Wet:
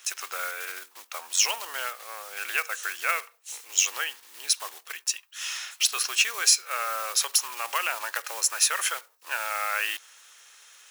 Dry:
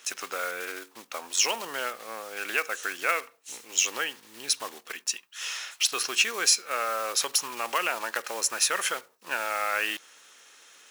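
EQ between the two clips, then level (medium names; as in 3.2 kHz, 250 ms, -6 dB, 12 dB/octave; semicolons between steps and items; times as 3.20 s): high-pass 730 Hz 12 dB/octave; treble shelf 8.7 kHz +6 dB; 0.0 dB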